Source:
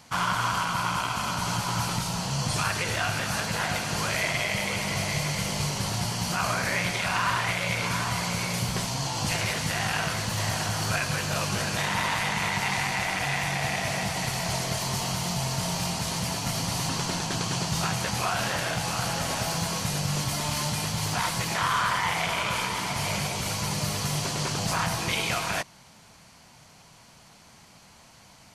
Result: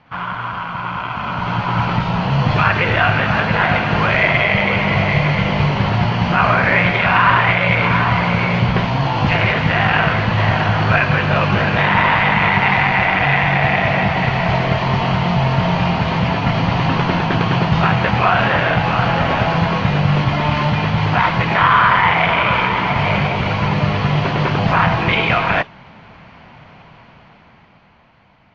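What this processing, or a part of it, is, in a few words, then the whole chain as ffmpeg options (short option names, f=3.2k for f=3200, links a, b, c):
action camera in a waterproof case: -af "lowpass=f=2.8k:w=0.5412,lowpass=f=2.8k:w=1.3066,dynaudnorm=f=240:g=13:m=13dB,volume=2dB" -ar 16000 -c:a aac -b:a 48k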